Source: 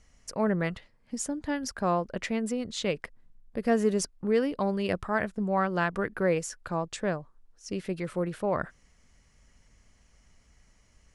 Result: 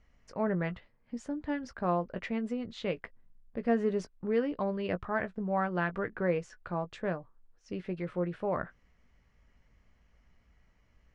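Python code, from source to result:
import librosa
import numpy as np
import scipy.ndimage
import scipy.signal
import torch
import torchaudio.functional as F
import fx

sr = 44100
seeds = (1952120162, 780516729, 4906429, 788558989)

y = scipy.signal.sosfilt(scipy.signal.butter(2, 2800.0, 'lowpass', fs=sr, output='sos'), x)
y = fx.doubler(y, sr, ms=17.0, db=-10.5)
y = y * librosa.db_to_amplitude(-4.0)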